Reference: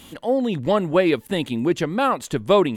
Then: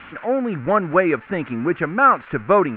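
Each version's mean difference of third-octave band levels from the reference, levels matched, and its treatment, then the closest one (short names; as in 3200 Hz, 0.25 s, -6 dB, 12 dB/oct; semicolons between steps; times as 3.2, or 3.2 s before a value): 7.0 dB: switching spikes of -18.5 dBFS; elliptic low-pass 2400 Hz, stop band 60 dB; bell 1400 Hz +12.5 dB 0.57 oct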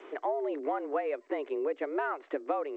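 12.5 dB: compressor 12:1, threshold -28 dBFS, peak gain reduction 17.5 dB; mistuned SSB +140 Hz 160–2200 Hz; G.722 64 kbps 16000 Hz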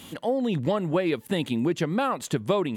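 2.5 dB: HPF 75 Hz; compressor 4:1, threshold -22 dBFS, peak gain reduction 9.5 dB; bell 160 Hz +3.5 dB 0.36 oct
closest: third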